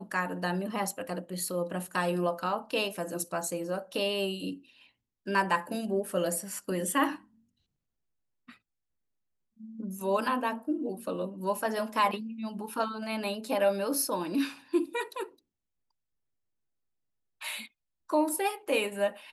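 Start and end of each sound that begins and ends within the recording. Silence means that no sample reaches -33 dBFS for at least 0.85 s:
9.8–15.24

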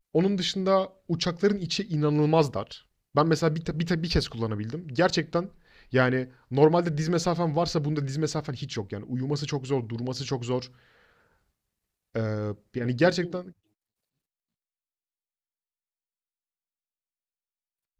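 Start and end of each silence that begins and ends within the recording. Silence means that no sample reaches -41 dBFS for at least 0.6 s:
10.67–12.15

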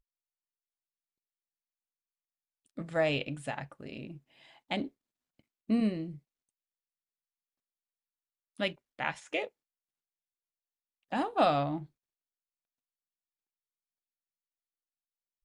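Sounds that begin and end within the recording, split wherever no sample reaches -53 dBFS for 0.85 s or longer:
2.66–6.19
8.57–9.48
11.12–11.86

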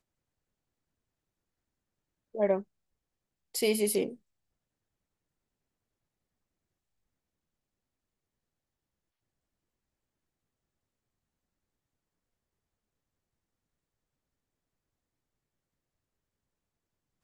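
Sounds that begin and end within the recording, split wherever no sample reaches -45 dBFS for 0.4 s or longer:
2.35–2.62
3.55–4.15

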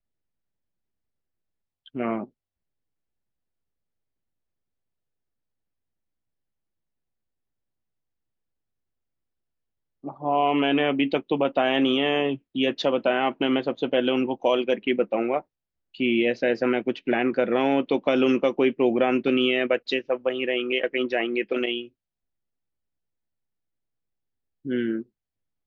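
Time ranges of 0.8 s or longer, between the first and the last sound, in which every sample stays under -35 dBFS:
2.24–10.05
21.85–24.66

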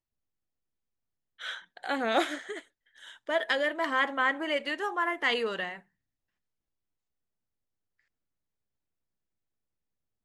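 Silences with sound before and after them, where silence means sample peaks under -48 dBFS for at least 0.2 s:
2.62–2.97

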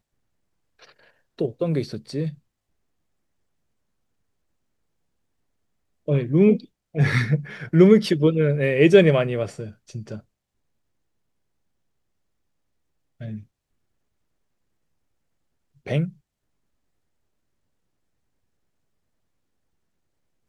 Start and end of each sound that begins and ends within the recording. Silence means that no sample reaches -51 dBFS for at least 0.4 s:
0.79–2.38
6.08–10.21
13.2–13.45
15.76–16.17

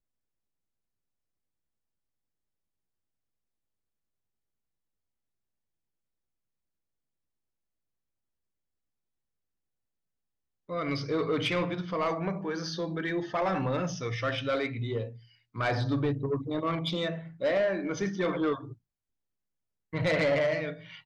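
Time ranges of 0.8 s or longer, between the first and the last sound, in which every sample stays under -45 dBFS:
18.74–19.93

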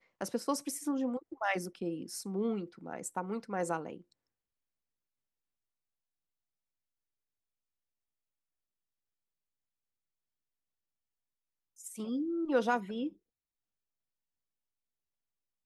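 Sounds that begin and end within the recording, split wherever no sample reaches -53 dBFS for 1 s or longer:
11.78–13.13

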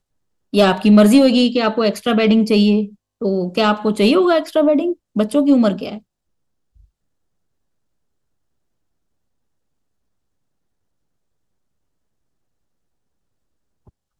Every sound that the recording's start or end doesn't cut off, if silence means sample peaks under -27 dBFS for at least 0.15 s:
0.54–2.86
3.22–4.93
5.16–5.97

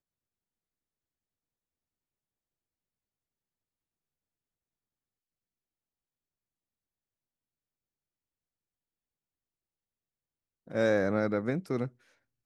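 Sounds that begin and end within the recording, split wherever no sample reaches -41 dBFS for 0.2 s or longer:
10.68–11.88

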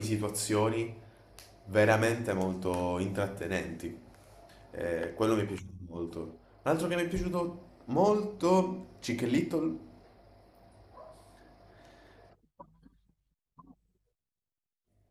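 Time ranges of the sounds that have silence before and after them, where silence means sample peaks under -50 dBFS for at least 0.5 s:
13.59–13.71

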